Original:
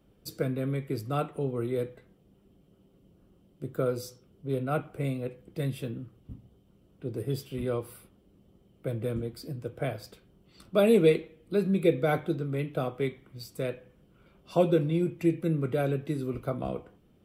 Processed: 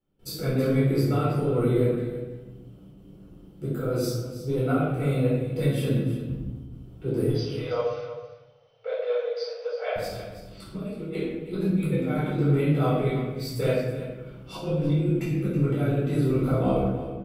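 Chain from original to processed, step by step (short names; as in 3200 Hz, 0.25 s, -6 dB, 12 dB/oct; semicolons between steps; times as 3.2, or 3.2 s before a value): gate with hold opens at -53 dBFS; negative-ratio compressor -30 dBFS, ratio -0.5; 7.31–9.96 brick-wall FIR band-pass 430–6200 Hz; echo 0.324 s -13 dB; reverb RT60 1.0 s, pre-delay 8 ms, DRR -7.5 dB; gain -4.5 dB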